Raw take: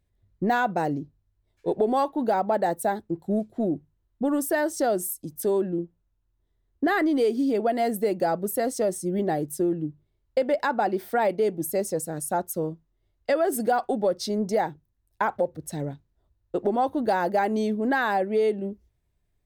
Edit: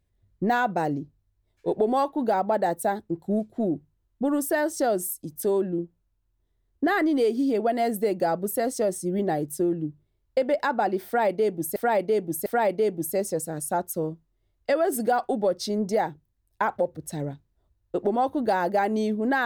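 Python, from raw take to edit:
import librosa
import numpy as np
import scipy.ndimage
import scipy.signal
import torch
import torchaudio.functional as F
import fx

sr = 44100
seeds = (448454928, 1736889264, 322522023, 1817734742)

y = fx.edit(x, sr, fx.repeat(start_s=11.06, length_s=0.7, count=3), tone=tone)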